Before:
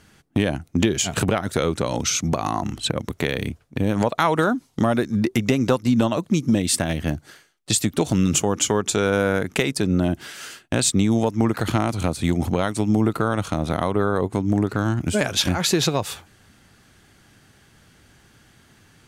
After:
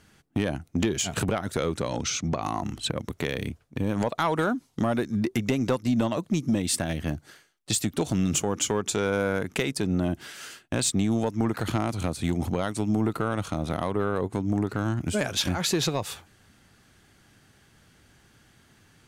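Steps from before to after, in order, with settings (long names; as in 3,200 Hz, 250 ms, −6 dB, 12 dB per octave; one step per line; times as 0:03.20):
0:01.87–0:02.41: low-pass filter 8,600 Hz → 4,900 Hz 12 dB per octave
soft clipping −9.5 dBFS, distortion −21 dB
level −4.5 dB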